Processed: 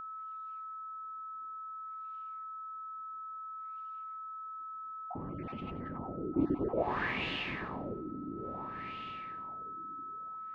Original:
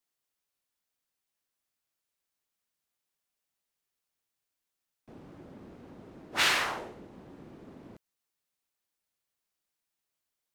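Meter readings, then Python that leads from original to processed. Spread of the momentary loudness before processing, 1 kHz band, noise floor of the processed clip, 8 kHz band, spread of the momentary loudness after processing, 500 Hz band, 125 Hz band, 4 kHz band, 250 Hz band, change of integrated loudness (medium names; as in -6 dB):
17 LU, +4.0 dB, -44 dBFS, under -30 dB, 10 LU, +7.5 dB, +10.0 dB, -10.0 dB, +11.5 dB, -11.5 dB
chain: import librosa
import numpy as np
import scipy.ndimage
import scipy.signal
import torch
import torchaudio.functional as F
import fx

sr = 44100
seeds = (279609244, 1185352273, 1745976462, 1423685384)

p1 = fx.spec_dropout(x, sr, seeds[0], share_pct=36)
p2 = fx.peak_eq(p1, sr, hz=1400.0, db=-12.0, octaves=0.21)
p3 = p2 + fx.echo_diffused(p2, sr, ms=468, feedback_pct=46, wet_db=-8.0, dry=0)
p4 = fx.filter_lfo_lowpass(p3, sr, shape='sine', hz=0.58, low_hz=290.0, high_hz=2900.0, q=4.7)
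p5 = p4 + 10.0 ** (-51.0 / 20.0) * np.sin(2.0 * np.pi * 1300.0 * np.arange(len(p4)) / sr)
p6 = fx.low_shelf(p5, sr, hz=360.0, db=10.0)
p7 = fx.over_compress(p6, sr, threshold_db=-49.0, ratio=-0.5)
y = p6 + (p7 * librosa.db_to_amplitude(-0.5))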